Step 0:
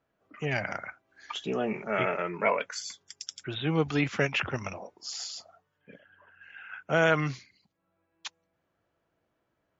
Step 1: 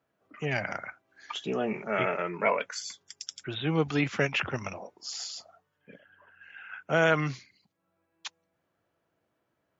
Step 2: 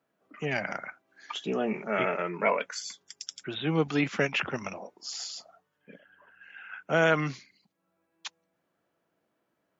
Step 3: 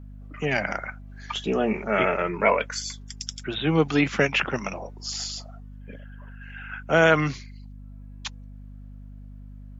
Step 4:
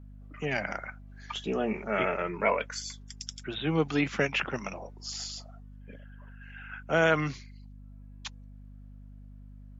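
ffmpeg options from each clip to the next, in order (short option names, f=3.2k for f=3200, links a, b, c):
-af "highpass=80"
-af "lowshelf=f=140:t=q:w=1.5:g=-6.5"
-af "aeval=exprs='val(0)+0.00501*(sin(2*PI*50*n/s)+sin(2*PI*2*50*n/s)/2+sin(2*PI*3*50*n/s)/3+sin(2*PI*4*50*n/s)/4+sin(2*PI*5*50*n/s)/5)':c=same,volume=5.5dB"
-af "volume=-5.5dB" -ar 48000 -c:a libmp3lame -b:a 112k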